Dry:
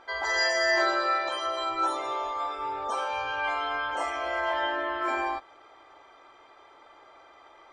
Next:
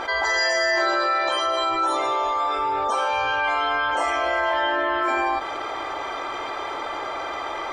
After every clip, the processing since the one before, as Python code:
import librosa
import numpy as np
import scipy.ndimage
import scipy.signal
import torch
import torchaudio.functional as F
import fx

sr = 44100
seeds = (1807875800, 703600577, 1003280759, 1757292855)

y = fx.env_flatten(x, sr, amount_pct=70)
y = y * librosa.db_to_amplitude(2.0)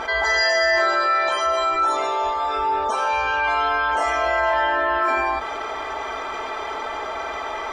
y = fx.peak_eq(x, sr, hz=61.0, db=9.0, octaves=0.82)
y = y + 0.49 * np.pad(y, (int(4.6 * sr / 1000.0), 0))[:len(y)]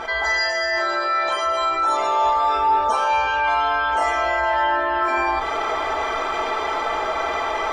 y = fx.rider(x, sr, range_db=4, speed_s=0.5)
y = fx.room_shoebox(y, sr, seeds[0], volume_m3=200.0, walls='furnished', distance_m=0.71)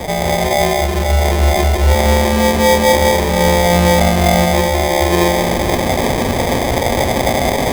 y = fx.echo_heads(x, sr, ms=92, heads='second and third', feedback_pct=64, wet_db=-7)
y = fx.sample_hold(y, sr, seeds[1], rate_hz=1400.0, jitter_pct=0)
y = y * librosa.db_to_amplitude(6.0)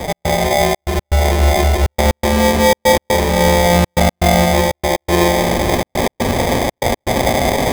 y = fx.step_gate(x, sr, bpm=121, pattern='x.xxxx.x.xxxxxx.', floor_db=-60.0, edge_ms=4.5)